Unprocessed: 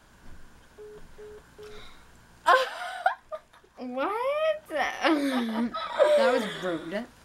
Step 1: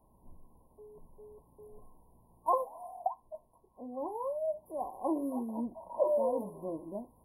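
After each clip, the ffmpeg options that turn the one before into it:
ffmpeg -i in.wav -af "afftfilt=real='re*(1-between(b*sr/4096,1100,9500))':imag='im*(1-between(b*sr/4096,1100,9500))':win_size=4096:overlap=0.75,volume=-7.5dB" out.wav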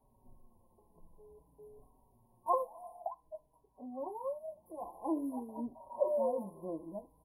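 ffmpeg -i in.wav -filter_complex "[0:a]asplit=2[link_01][link_02];[link_02]adelay=4.8,afreqshift=-0.52[link_03];[link_01][link_03]amix=inputs=2:normalize=1,volume=-1dB" out.wav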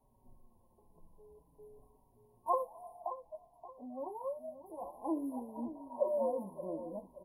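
ffmpeg -i in.wav -filter_complex "[0:a]asplit=2[link_01][link_02];[link_02]adelay=576,lowpass=frequency=1300:poles=1,volume=-12dB,asplit=2[link_03][link_04];[link_04]adelay=576,lowpass=frequency=1300:poles=1,volume=0.39,asplit=2[link_05][link_06];[link_06]adelay=576,lowpass=frequency=1300:poles=1,volume=0.39,asplit=2[link_07][link_08];[link_08]adelay=576,lowpass=frequency=1300:poles=1,volume=0.39[link_09];[link_01][link_03][link_05][link_07][link_09]amix=inputs=5:normalize=0,volume=-1dB" out.wav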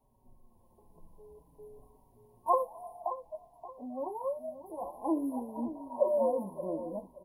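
ffmpeg -i in.wav -af "dynaudnorm=framelen=370:gausssize=3:maxgain=5dB" out.wav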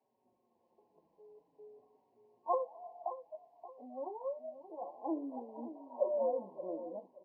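ffmpeg -i in.wav -af "highpass=430,equalizer=frequency=600:width_type=q:width=4:gain=-4,equalizer=frequency=990:width_type=q:width=4:gain=-10,equalizer=frequency=1400:width_type=q:width=4:gain=-5,equalizer=frequency=3500:width_type=q:width=4:gain=-8,lowpass=frequency=4200:width=0.5412,lowpass=frequency=4200:width=1.3066" out.wav

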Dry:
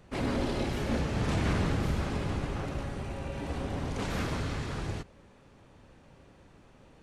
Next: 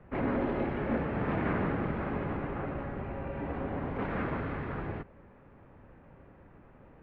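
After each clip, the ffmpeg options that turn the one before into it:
ffmpeg -i in.wav -filter_complex "[0:a]lowpass=frequency=2100:width=0.5412,lowpass=frequency=2100:width=1.3066,acrossover=split=160[link_01][link_02];[link_01]acompressor=threshold=-41dB:ratio=6[link_03];[link_03][link_02]amix=inputs=2:normalize=0,volume=1.5dB" out.wav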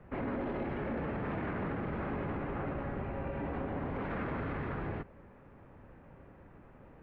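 ffmpeg -i in.wav -af "alimiter=level_in=4.5dB:limit=-24dB:level=0:latency=1:release=31,volume=-4.5dB" out.wav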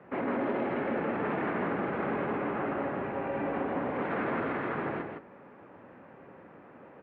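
ffmpeg -i in.wav -af "highpass=240,lowpass=3500,aecho=1:1:161:0.562,volume=6dB" out.wav

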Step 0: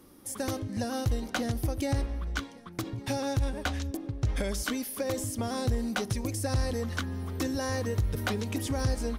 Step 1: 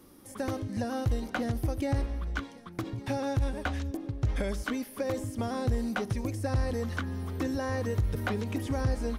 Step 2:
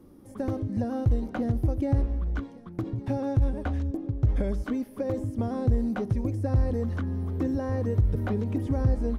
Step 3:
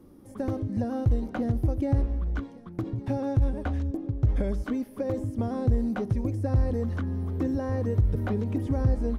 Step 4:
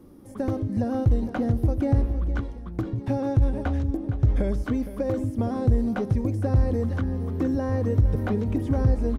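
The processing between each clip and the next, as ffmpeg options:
ffmpeg -i in.wav -filter_complex "[0:a]acrossover=split=2700[link_01][link_02];[link_02]acompressor=threshold=-47dB:ratio=4:attack=1:release=60[link_03];[link_01][link_03]amix=inputs=2:normalize=0" out.wav
ffmpeg -i in.wav -af "tiltshelf=frequency=970:gain=8.5,volume=-3dB" out.wav
ffmpeg -i in.wav -af anull out.wav
ffmpeg -i in.wav -af "aecho=1:1:463:0.224,volume=3dB" out.wav

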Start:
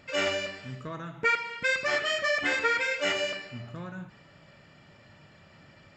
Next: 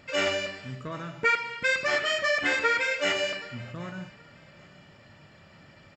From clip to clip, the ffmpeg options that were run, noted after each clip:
ffmpeg -i in.wav -af "aecho=1:1:775|1550:0.075|0.0217,volume=1.5dB" out.wav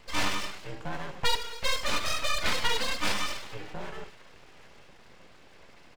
ffmpeg -i in.wav -af "equalizer=frequency=320:width_type=o:width=0.37:gain=11.5,afreqshift=35,aeval=exprs='abs(val(0))':channel_layout=same" out.wav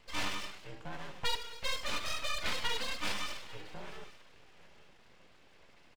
ffmpeg -i in.wav -af "equalizer=frequency=3000:width=1.5:gain=2.5,aecho=1:1:843:0.0944,volume=-8dB" out.wav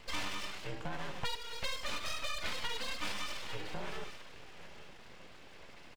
ffmpeg -i in.wav -af "acompressor=threshold=-41dB:ratio=5,volume=7.5dB" out.wav

